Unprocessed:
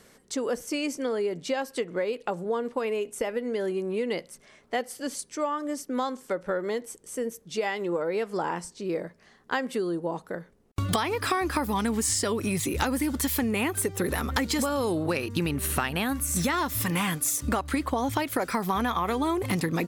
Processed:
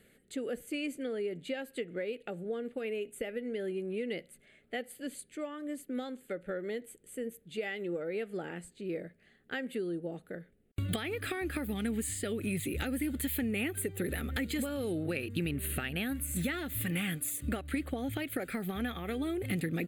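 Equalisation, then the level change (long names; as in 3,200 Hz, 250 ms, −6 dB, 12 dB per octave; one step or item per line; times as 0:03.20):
phaser with its sweep stopped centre 2,400 Hz, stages 4
−5.0 dB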